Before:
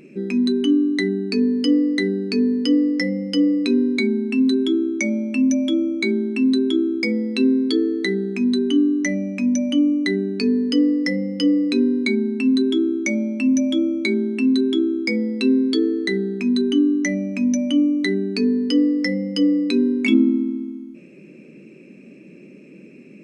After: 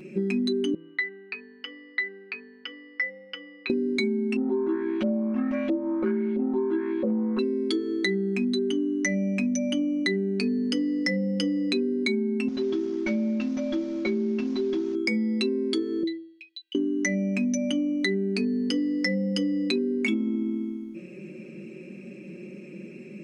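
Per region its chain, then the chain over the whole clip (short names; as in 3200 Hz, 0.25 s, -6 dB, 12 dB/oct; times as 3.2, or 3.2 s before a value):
0.74–3.7 Butterworth band-pass 1700 Hz, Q 0.89 + air absorption 150 m
4.36–7.39 median filter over 41 samples + LFO low-pass saw up 1.5 Hz 520–3200 Hz
12.48–14.95 CVSD 32 kbps + compressor 3:1, threshold -20 dBFS + high shelf 2600 Hz -11.5 dB
16.03–16.75 steep high-pass 2900 Hz + air absorption 420 m
whole clip: comb 5.5 ms, depth 77%; de-hum 164.3 Hz, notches 7; compressor, threshold -23 dBFS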